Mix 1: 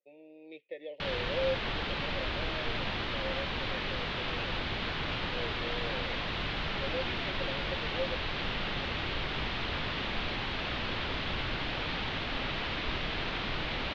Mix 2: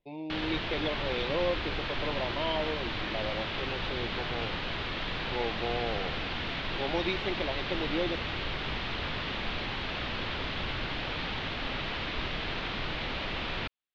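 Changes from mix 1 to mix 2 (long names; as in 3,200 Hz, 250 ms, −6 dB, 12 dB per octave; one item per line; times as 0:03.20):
speech: remove formant filter e
background: entry −0.70 s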